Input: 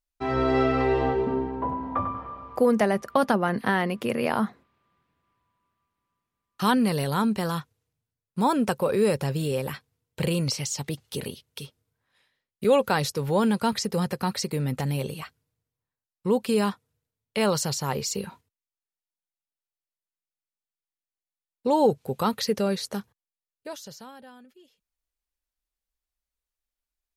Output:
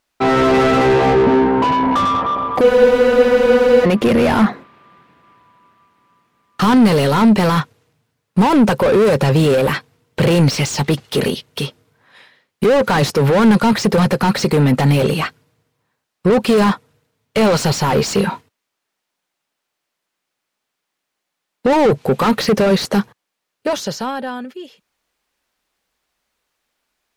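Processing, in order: overdrive pedal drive 32 dB, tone 2500 Hz, clips at -8 dBFS; bell 160 Hz +8.5 dB 2.6 oct; spectral freeze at 2.65, 1.20 s; gain -1 dB

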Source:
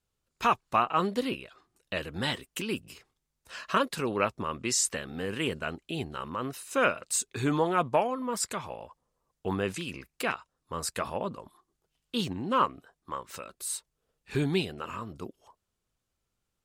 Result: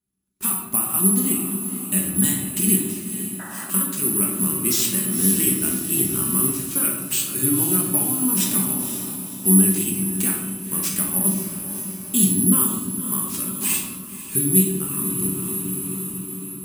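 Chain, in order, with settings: compressor, threshold -27 dBFS, peak gain reduction 8.5 dB; careless resampling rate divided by 4×, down none, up zero stuff; HPF 67 Hz; resonator 190 Hz, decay 0.19 s, harmonics all, mix 70%; on a send: diffused feedback echo 0.524 s, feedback 61%, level -10.5 dB; on the sum: shoebox room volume 400 m³, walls mixed, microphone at 1.3 m; painted sound noise, 3.39–3.71, 530–2000 Hz -38 dBFS; bell 9800 Hz +10 dB 1.5 oct; AGC gain up to 10 dB; resonant low shelf 390 Hz +8 dB, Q 3; mismatched tape noise reduction decoder only; gain -2 dB

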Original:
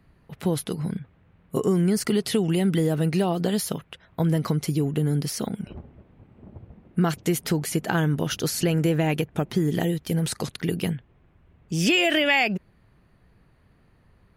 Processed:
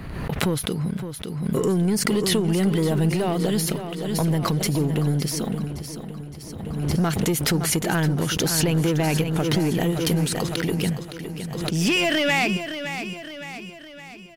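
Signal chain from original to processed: sample leveller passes 2; on a send: feedback echo 0.564 s, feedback 52%, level -9.5 dB; on the sum: backwards sustainer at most 35 dB/s; gain -5 dB

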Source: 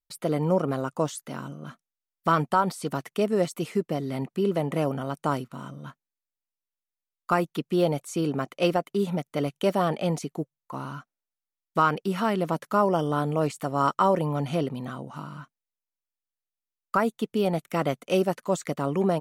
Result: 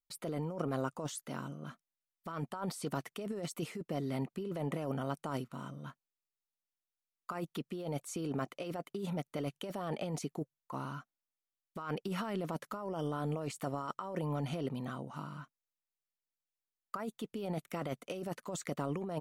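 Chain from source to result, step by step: negative-ratio compressor -28 dBFS, ratio -1; gain -9 dB

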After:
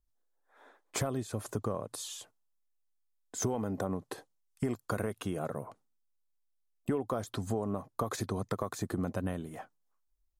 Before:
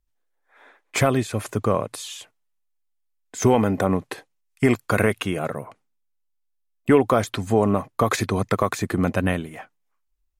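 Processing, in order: bell 2300 Hz -11.5 dB 0.97 oct; compressor 4:1, threshold -27 dBFS, peak gain reduction 13.5 dB; gain -4 dB

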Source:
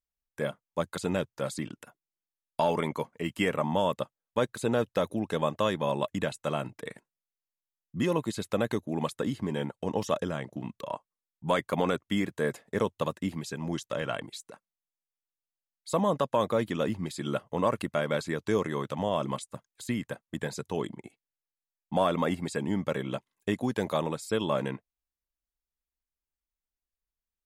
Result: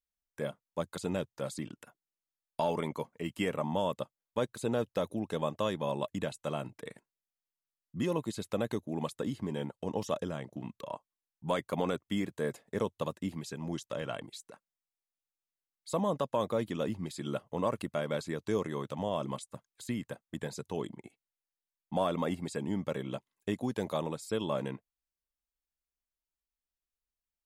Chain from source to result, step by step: dynamic EQ 1700 Hz, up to -4 dB, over -47 dBFS, Q 1.1; gain -4 dB

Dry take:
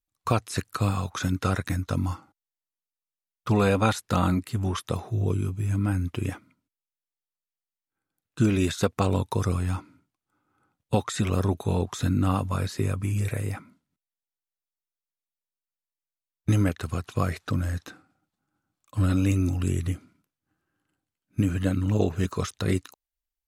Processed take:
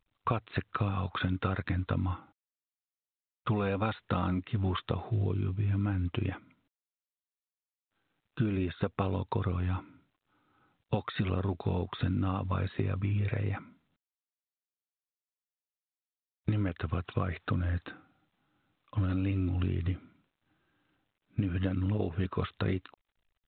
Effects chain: compressor 8:1, threshold -26 dBFS, peak gain reduction 10 dB; 8.49–8.95 air absorption 260 m; µ-law 64 kbps 8000 Hz

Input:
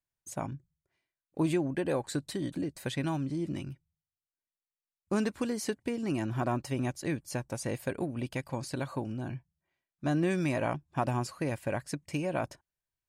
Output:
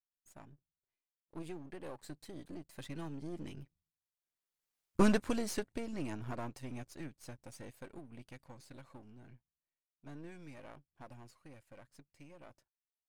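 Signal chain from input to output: half-wave gain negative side -12 dB; Doppler pass-by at 4.79, 9 m/s, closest 1.8 m; gain +11.5 dB

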